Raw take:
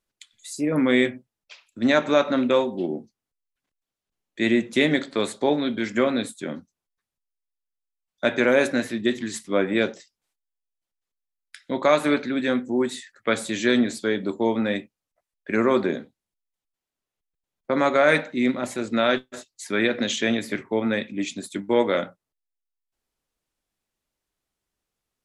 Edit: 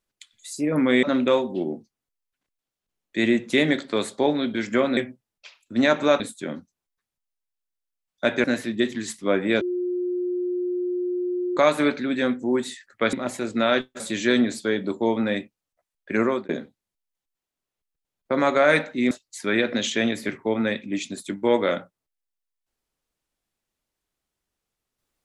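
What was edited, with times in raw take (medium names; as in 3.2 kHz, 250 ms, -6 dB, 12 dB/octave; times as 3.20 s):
1.03–2.26 s: move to 6.20 s
8.44–8.70 s: delete
9.87–11.83 s: bleep 358 Hz -23 dBFS
15.61–15.88 s: fade out
18.50–19.37 s: move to 13.39 s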